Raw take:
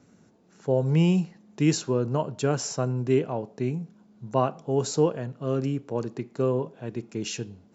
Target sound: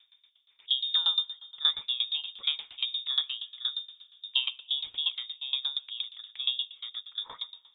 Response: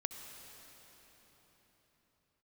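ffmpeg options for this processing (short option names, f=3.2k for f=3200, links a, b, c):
-filter_complex "[0:a]asplit=2[a][b];[1:a]atrim=start_sample=2205,lowpass=3.1k,adelay=99[c];[b][c]afir=irnorm=-1:irlink=0,volume=-14dB[d];[a][d]amix=inputs=2:normalize=0,lowpass=f=3.2k:t=q:w=0.5098,lowpass=f=3.2k:t=q:w=0.6013,lowpass=f=3.2k:t=q:w=0.9,lowpass=f=3.2k:t=q:w=2.563,afreqshift=-3800,aeval=exprs='val(0)*pow(10,-20*if(lt(mod(8.5*n/s,1),2*abs(8.5)/1000),1-mod(8.5*n/s,1)/(2*abs(8.5)/1000),(mod(8.5*n/s,1)-2*abs(8.5)/1000)/(1-2*abs(8.5)/1000))/20)':c=same"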